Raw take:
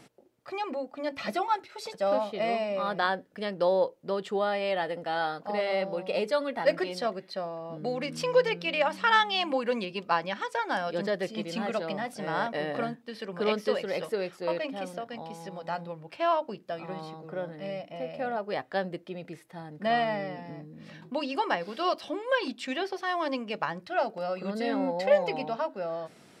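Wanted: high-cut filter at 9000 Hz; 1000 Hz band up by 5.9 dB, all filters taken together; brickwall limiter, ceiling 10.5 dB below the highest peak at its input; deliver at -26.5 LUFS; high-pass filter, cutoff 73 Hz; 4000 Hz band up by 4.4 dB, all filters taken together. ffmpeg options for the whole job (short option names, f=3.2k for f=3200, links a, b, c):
-af "highpass=73,lowpass=9k,equalizer=f=1k:t=o:g=7.5,equalizer=f=4k:t=o:g=5.5,volume=2.5dB,alimiter=limit=-14dB:level=0:latency=1"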